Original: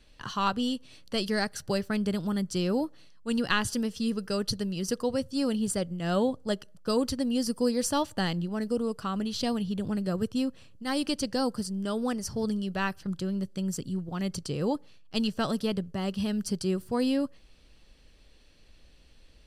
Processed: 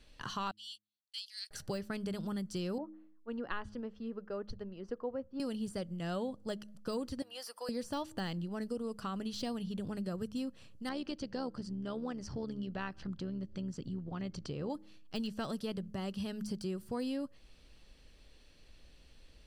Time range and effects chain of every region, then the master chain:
0.51–1.51 gate -36 dBFS, range -36 dB + ladder high-pass 3000 Hz, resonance 45%
2.78–5.4 LPF 1300 Hz + bell 150 Hz -13.5 dB 1.1 oct + three-band expander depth 70%
7.22–7.69 HPF 680 Hz 24 dB/oct + bell 7100 Hz -10 dB 1.2 oct
10.89–14.7 upward compressor, threshold -30 dBFS + AM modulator 74 Hz, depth 30% + air absorption 140 m
whole clip: de-esser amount 85%; de-hum 104.8 Hz, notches 3; compressor 2.5:1, threshold -36 dBFS; gain -2 dB

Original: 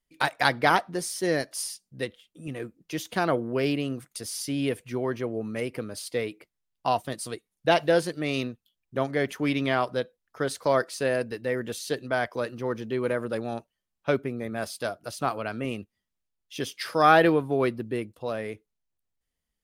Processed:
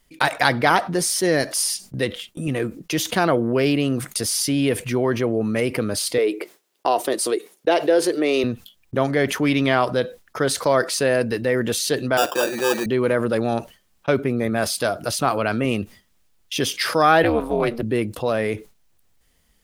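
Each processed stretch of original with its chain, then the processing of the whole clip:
6.18–8.44 compressor 1.5:1, threshold -28 dBFS + resonant high-pass 380 Hz, resonance Q 2.9
12.17–12.86 comb 5.6 ms, depth 79% + sample-rate reducer 2100 Hz + HPF 320 Hz
17.23–17.83 HPF 290 Hz 24 dB/oct + AM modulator 230 Hz, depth 80%
whole clip: gate with hold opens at -42 dBFS; fast leveller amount 50%; gain +2 dB

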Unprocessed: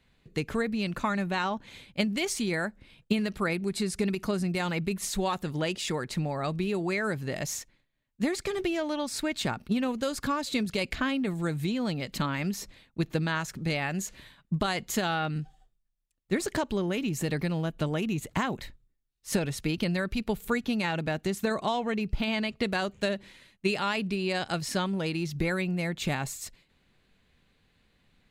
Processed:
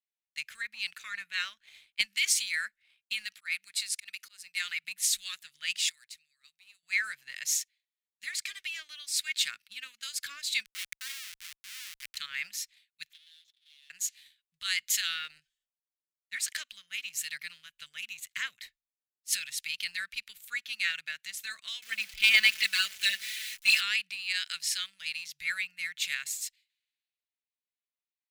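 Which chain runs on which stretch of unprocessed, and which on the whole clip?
3.33–4.84 HPF 520 Hz 6 dB/oct + auto swell 0.111 s
5.89–6.83 passive tone stack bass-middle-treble 5-5-5 + notch 3300 Hz, Q 23
10.65–12.17 HPF 160 Hz + Schmitt trigger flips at -29 dBFS
13.13–13.9 half-waves squared off + band-pass 3500 Hz, Q 8.8 + compressor 2.5:1, threshold -49 dBFS
21.82–23.81 zero-crossing step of -36 dBFS + comb 4.6 ms, depth 89%
whole clip: inverse Chebyshev high-pass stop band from 920 Hz, stop band 40 dB; sample leveller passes 1; three-band expander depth 70%

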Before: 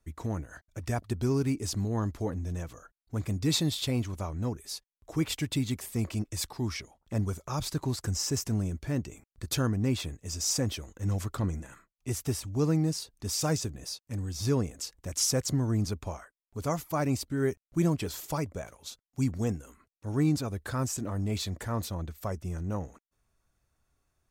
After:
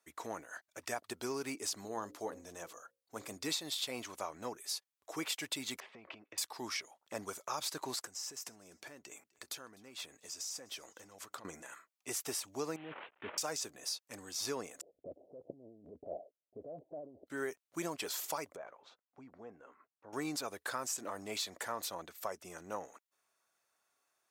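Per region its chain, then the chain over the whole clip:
1.81–3.33 bell 2100 Hz -4 dB 1.4 oct + notches 60/120/180/240/300/360/420/480/540 Hz
5.8–6.38 LPF 3000 Hz 24 dB/oct + compressor 12:1, threshold -38 dBFS
8.02–11.45 compressor 16:1, threshold -39 dBFS + feedback echo 0.252 s, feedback 37%, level -24 dB
12.76–13.38 CVSD 16 kbps + negative-ratio compressor -33 dBFS
14.81–17.27 steep low-pass 670 Hz 72 dB/oct + negative-ratio compressor -38 dBFS
18.56–20.13 LPF 1400 Hz + compressor 3:1, threshold -40 dBFS
whole clip: HPF 590 Hz 12 dB/oct; compressor 10:1, threshold -35 dBFS; gain +1.5 dB

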